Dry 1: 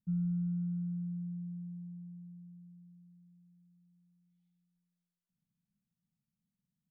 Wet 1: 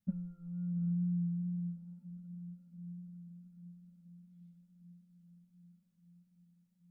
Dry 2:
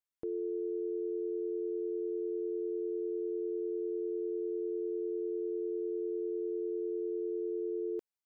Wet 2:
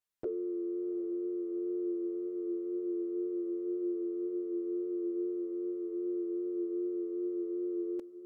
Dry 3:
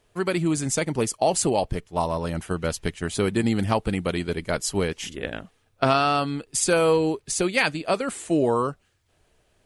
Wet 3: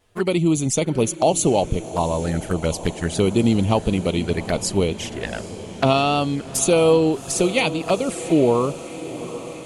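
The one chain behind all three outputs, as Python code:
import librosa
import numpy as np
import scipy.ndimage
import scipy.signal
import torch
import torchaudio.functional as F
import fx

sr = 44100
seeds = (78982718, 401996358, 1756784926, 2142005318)

y = fx.env_flanger(x, sr, rest_ms=10.9, full_db=-22.0)
y = fx.wow_flutter(y, sr, seeds[0], rate_hz=2.1, depth_cents=21.0)
y = fx.echo_diffused(y, sr, ms=769, feedback_pct=70, wet_db=-15.0)
y = F.gain(torch.from_numpy(y), 5.5).numpy()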